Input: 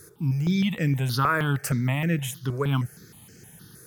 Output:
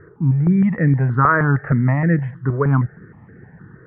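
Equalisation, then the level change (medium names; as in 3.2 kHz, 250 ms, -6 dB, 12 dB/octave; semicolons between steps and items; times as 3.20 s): Chebyshev low-pass 1.9 kHz, order 5; +8.5 dB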